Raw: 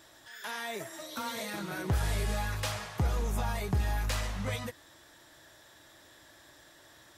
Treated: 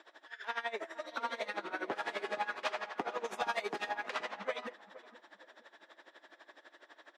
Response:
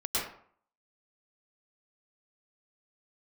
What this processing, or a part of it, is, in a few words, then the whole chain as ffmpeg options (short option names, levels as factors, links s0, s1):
helicopter radio: -filter_complex "[0:a]highpass=f=230:w=0.5412,highpass=f=230:w=1.3066,asettb=1/sr,asplit=3[s0][s1][s2];[s0]atrim=end=3.244[s3];[s1]atrim=start=3.24:end=3.89,asetpts=PTS-STARTPTS,afade=t=in:d=0.004:c=qsin,afade=t=out:st=0.646:d=0.004:c=qsin,highshelf=f=2800:g=10.5[s4];[s2]atrim=start=3.886[s5];[s3][s4]acrossfade=d=0.004:c1=hsin:c2=qsin[s6];[s6][s5]acrossfade=d=0.004:c1=qsin:c2=hsin,highpass=390,lowpass=2700,aeval=exprs='val(0)*pow(10,-19*(0.5-0.5*cos(2*PI*12*n/s))/20)':c=same,asoftclip=type=hard:threshold=0.0316,asplit=2[s7][s8];[s8]adelay=470,lowpass=f=920:p=1,volume=0.178,asplit=2[s9][s10];[s10]adelay=470,lowpass=f=920:p=1,volume=0.39,asplit=2[s11][s12];[s12]adelay=470,lowpass=f=920:p=1,volume=0.39,asplit=2[s13][s14];[s14]adelay=470,lowpass=f=920:p=1,volume=0.39[s15];[s7][s9][s11][s13][s15]amix=inputs=5:normalize=0,volume=2.11"